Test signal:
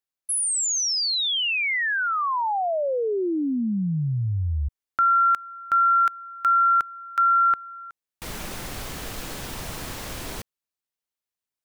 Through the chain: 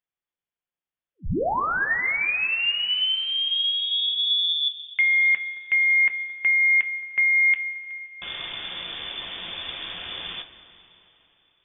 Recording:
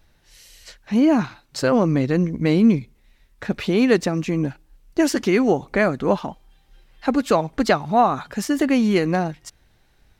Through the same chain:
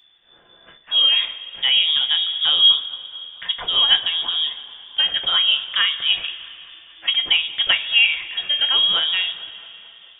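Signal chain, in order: thin delay 0.221 s, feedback 62%, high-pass 2400 Hz, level -15 dB; inverted band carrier 3500 Hz; two-slope reverb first 0.24 s, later 3.4 s, from -18 dB, DRR 5.5 dB; gain -1 dB

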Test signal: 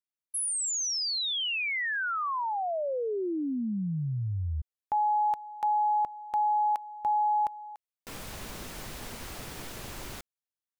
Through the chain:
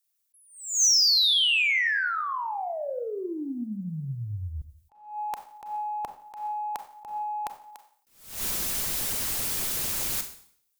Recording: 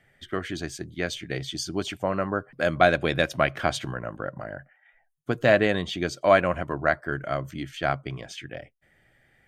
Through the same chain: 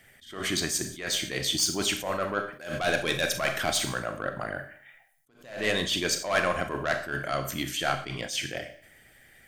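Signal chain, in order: harmonic-percussive split percussive +8 dB; pre-emphasis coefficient 0.8; in parallel at +2 dB: compressor 6:1, threshold -38 dBFS; on the sum: soft clip -20.5 dBFS; Schroeder reverb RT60 0.57 s, combs from 29 ms, DRR 7 dB; attack slew limiter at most 110 dB/s; gain +4.5 dB

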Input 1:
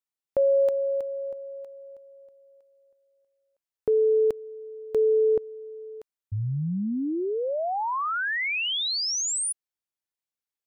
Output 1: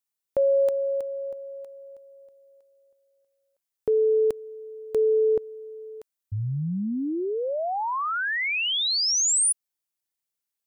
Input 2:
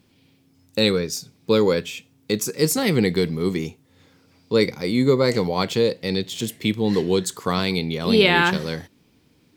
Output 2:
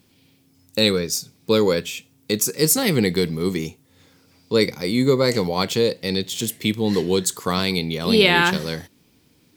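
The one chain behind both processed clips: high shelf 5500 Hz +8.5 dB

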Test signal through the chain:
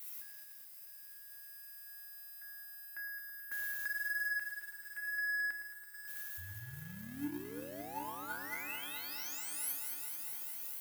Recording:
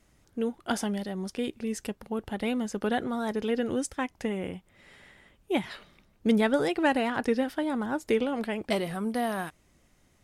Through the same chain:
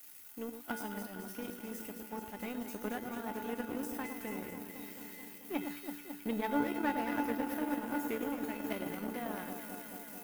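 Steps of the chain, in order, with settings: switching spikes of -28 dBFS; band shelf 5600 Hz -8.5 dB; resonator 290 Hz, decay 0.57 s, harmonics odd, mix 90%; on a send: echo with dull and thin repeats by turns 0.109 s, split 1300 Hz, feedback 89%, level -6 dB; on the sum: power-law curve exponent 1.4; in parallel at +3 dB: compressor, threshold -47 dBFS; on the sum: gain +5 dB

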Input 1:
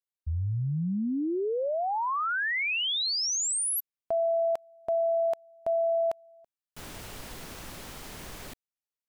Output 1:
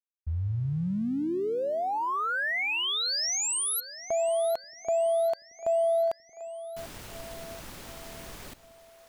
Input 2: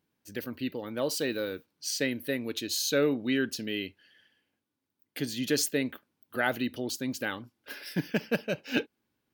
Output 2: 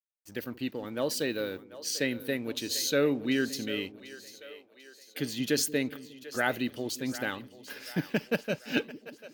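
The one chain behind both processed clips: crossover distortion -56.5 dBFS; split-band echo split 390 Hz, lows 0.178 s, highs 0.742 s, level -15 dB

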